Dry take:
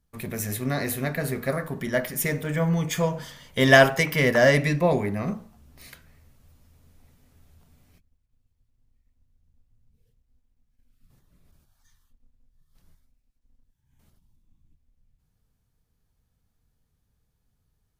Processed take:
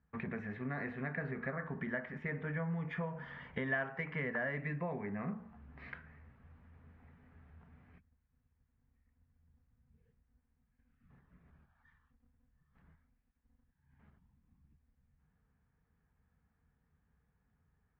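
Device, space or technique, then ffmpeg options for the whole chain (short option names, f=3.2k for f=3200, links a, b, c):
bass amplifier: -af "acompressor=threshold=-37dB:ratio=5,highpass=65,equalizer=f=110:t=q:w=4:g=-10,equalizer=f=330:t=q:w=4:g=-8,equalizer=f=580:t=q:w=4:g=-7,equalizer=f=1.7k:t=q:w=4:g=4,lowpass=f=2.1k:w=0.5412,lowpass=f=2.1k:w=1.3066,volume=2dB"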